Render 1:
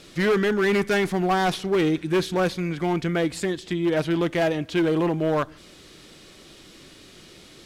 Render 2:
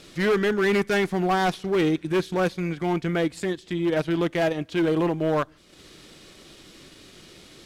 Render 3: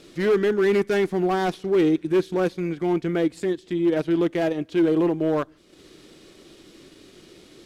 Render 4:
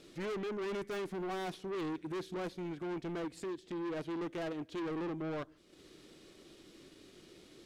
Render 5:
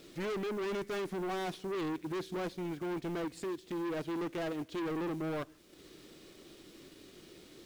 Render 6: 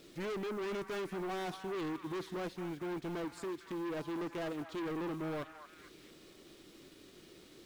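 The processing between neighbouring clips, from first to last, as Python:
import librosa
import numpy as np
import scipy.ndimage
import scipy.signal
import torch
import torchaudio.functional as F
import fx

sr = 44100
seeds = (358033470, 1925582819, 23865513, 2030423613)

y1 = fx.transient(x, sr, attack_db=-3, sustain_db=-8)
y2 = fx.peak_eq(y1, sr, hz=350.0, db=8.0, octaves=1.2)
y2 = F.gain(torch.from_numpy(y2), -4.0).numpy()
y3 = 10.0 ** (-27.5 / 20.0) * np.tanh(y2 / 10.0 ** (-27.5 / 20.0))
y3 = F.gain(torch.from_numpy(y3), -8.5).numpy()
y4 = fx.quant_companded(y3, sr, bits=6)
y4 = F.gain(torch.from_numpy(y4), 2.5).numpy()
y5 = fx.echo_stepped(y4, sr, ms=226, hz=1100.0, octaves=0.7, feedback_pct=70, wet_db=-6)
y5 = F.gain(torch.from_numpy(y5), -2.5).numpy()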